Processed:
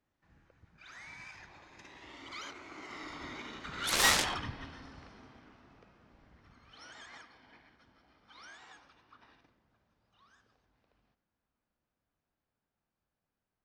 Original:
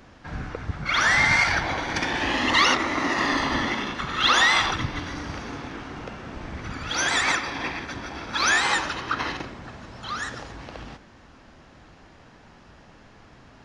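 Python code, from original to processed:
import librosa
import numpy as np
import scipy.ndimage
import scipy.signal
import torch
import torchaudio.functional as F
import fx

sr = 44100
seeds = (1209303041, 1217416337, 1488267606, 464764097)

y = fx.doppler_pass(x, sr, speed_mps=30, closest_m=4.4, pass_at_s=4.09)
y = fx.cheby_harmonics(y, sr, harmonics=(7,), levels_db=(-9,), full_scale_db=-7.5)
y = y * librosa.db_to_amplitude(-7.0)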